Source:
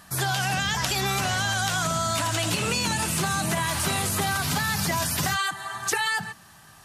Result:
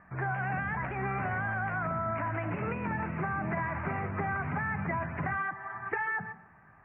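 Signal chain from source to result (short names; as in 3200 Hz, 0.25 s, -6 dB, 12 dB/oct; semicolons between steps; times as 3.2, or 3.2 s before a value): steep low-pass 2300 Hz 72 dB/oct; on a send: reverb RT60 0.75 s, pre-delay 0.131 s, DRR 18.5 dB; on the sum: gain -5.5 dB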